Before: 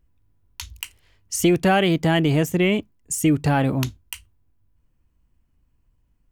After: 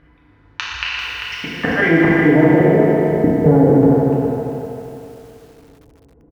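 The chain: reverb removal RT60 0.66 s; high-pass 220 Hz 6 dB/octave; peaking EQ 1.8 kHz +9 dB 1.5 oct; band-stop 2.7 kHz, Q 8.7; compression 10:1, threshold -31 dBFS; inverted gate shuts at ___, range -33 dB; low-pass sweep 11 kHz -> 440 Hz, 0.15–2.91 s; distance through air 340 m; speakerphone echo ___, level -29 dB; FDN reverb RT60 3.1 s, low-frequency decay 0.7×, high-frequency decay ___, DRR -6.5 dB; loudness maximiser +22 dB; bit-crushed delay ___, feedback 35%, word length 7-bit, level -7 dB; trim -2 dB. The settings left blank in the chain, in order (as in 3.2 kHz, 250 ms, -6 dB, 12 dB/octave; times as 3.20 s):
-21 dBFS, 130 ms, 0.95×, 393 ms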